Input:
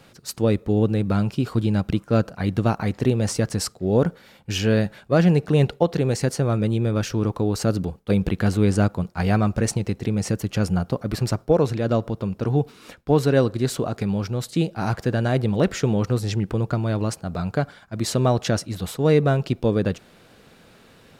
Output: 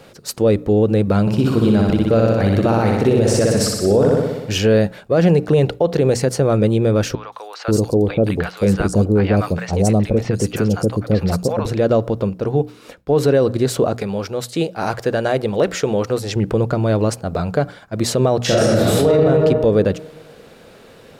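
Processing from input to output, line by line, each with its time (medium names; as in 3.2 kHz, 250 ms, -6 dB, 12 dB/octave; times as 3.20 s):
1.21–4.55 s: flutter echo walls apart 10.5 m, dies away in 1.1 s
7.15–11.66 s: three bands offset in time mids, highs, lows 170/530 ms, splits 820/4400 Hz
12.30–13.15 s: gain -4 dB
13.96–16.36 s: bass shelf 320 Hz -9.5 dB
18.44–19.11 s: reverb throw, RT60 1.4 s, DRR -9.5 dB
whole clip: peaking EQ 500 Hz +7 dB 0.97 oct; hum notches 60/120/180/240/300 Hz; peak limiter -11 dBFS; trim +5 dB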